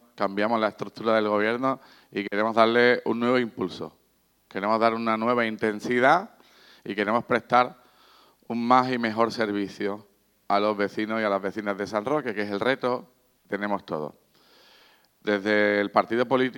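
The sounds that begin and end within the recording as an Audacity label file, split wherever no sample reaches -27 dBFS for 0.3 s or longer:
2.160000	3.860000	sound
4.560000	6.210000	sound
6.860000	7.680000	sound
8.500000	9.960000	sound
10.500000	13.000000	sound
13.530000	14.080000	sound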